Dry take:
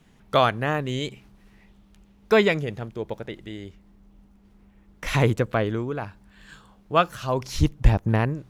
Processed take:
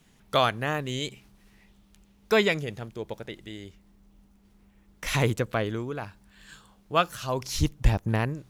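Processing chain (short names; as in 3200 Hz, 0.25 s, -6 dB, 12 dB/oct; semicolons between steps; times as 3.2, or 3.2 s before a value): high shelf 3300 Hz +9.5 dB; gain -4.5 dB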